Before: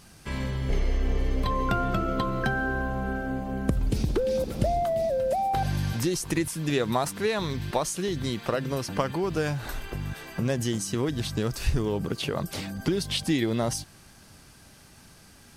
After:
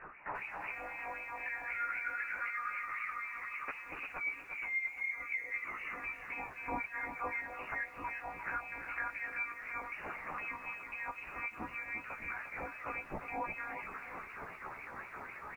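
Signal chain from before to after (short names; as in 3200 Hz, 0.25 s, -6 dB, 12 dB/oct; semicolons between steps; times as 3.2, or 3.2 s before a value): on a send at -9.5 dB: reverb, pre-delay 3 ms; on the sum: monotone LPC vocoder at 8 kHz 230 Hz; LFO band-pass sine 3.9 Hz 510–2000 Hz; chorus voices 2, 0.27 Hz, delay 15 ms, depth 3.3 ms; reverse; upward compressor, threshold -46 dBFS; reverse; frequency-shifting echo 0.366 s, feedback 62%, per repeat +110 Hz, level -23 dB; compressor 2.5:1, threshold -50 dBFS, peak gain reduction 16 dB; tilt +2 dB/oct; pre-echo 82 ms -21 dB; inverted band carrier 2800 Hz; lo-fi delay 0.35 s, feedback 35%, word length 12-bit, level -8 dB; gain +9.5 dB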